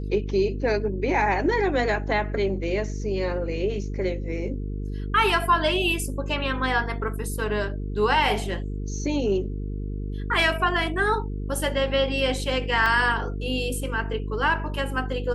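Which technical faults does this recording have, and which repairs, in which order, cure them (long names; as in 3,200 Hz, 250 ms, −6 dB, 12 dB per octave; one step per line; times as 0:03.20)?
mains buzz 50 Hz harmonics 9 −30 dBFS
0:12.86: drop-out 2.6 ms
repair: hum removal 50 Hz, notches 9
repair the gap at 0:12.86, 2.6 ms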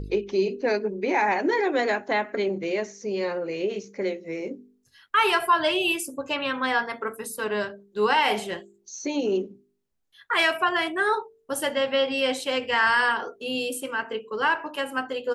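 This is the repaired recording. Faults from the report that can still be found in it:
none of them is left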